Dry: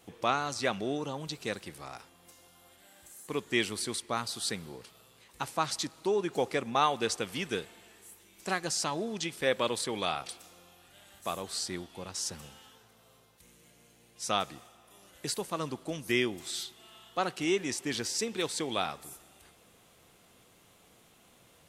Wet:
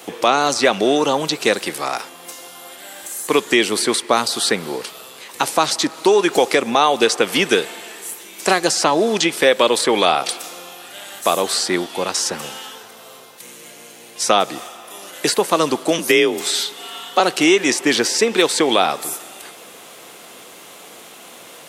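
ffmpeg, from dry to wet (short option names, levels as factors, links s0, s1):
-filter_complex "[0:a]asettb=1/sr,asplit=3[s0][s1][s2];[s0]atrim=end=15.984[s3];[s1]atrim=start=15.98:end=17.2,asetpts=PTS-STARTPTS,afade=t=in:d=0.004:c=qsin,afade=t=out:st=1.216:d=0.004:c=qsin,afreqshift=45[s4];[s2]atrim=start=17.196[s5];[s3][s4]acrossfade=d=0.004:c1=hsin:c2=qsin[s6];[s6][s5]acrossfade=d=0.004:c1=qsin:c2=hsin,highpass=310,acrossover=split=790|2700[s7][s8][s9];[s7]acompressor=threshold=0.0178:ratio=4[s10];[s8]acompressor=threshold=0.00794:ratio=4[s11];[s9]acompressor=threshold=0.00708:ratio=4[s12];[s10][s11][s12]amix=inputs=3:normalize=0,alimiter=level_in=14.1:limit=0.891:release=50:level=0:latency=1,volume=0.891"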